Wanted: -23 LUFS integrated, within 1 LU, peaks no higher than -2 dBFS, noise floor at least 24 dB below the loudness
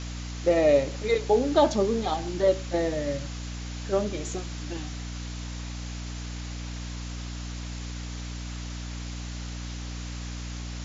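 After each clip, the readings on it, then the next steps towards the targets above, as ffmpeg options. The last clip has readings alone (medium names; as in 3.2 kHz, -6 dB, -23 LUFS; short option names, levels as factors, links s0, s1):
hum 60 Hz; highest harmonic 300 Hz; hum level -33 dBFS; noise floor -36 dBFS; noise floor target -53 dBFS; loudness -29.0 LUFS; peak level -9.0 dBFS; loudness target -23.0 LUFS
-> -af "bandreject=f=60:t=h:w=6,bandreject=f=120:t=h:w=6,bandreject=f=180:t=h:w=6,bandreject=f=240:t=h:w=6,bandreject=f=300:t=h:w=6"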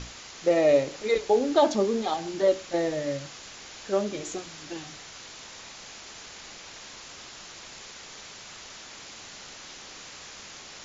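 hum not found; noise floor -45 dBFS; noise floor target -50 dBFS
-> -af "afftdn=nr=6:nf=-45"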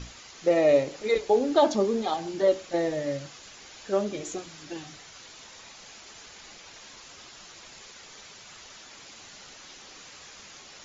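noise floor -48 dBFS; noise floor target -50 dBFS
-> -af "afftdn=nr=6:nf=-48"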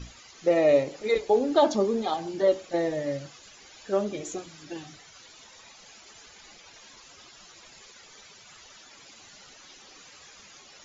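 noise floor -52 dBFS; loudness -26.0 LUFS; peak level -9.0 dBFS; loudness target -23.0 LUFS
-> -af "volume=1.41"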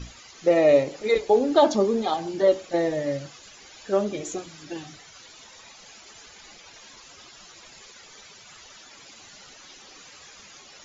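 loudness -23.0 LUFS; peak level -6.0 dBFS; noise floor -49 dBFS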